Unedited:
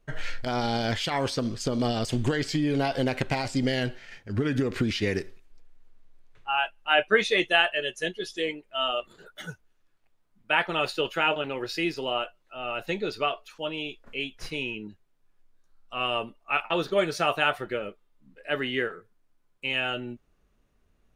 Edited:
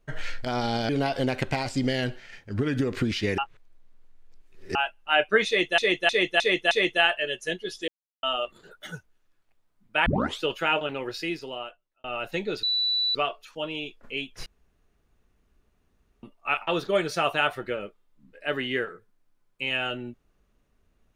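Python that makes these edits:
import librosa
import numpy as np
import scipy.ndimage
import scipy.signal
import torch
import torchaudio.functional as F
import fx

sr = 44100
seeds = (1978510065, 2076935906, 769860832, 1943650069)

y = fx.edit(x, sr, fx.cut(start_s=0.89, length_s=1.79),
    fx.reverse_span(start_s=5.17, length_s=1.37),
    fx.repeat(start_s=7.26, length_s=0.31, count=5),
    fx.silence(start_s=8.43, length_s=0.35),
    fx.tape_start(start_s=10.61, length_s=0.36),
    fx.fade_out_span(start_s=11.55, length_s=1.04),
    fx.insert_tone(at_s=13.18, length_s=0.52, hz=3960.0, db=-22.0),
    fx.room_tone_fill(start_s=14.49, length_s=1.77), tone=tone)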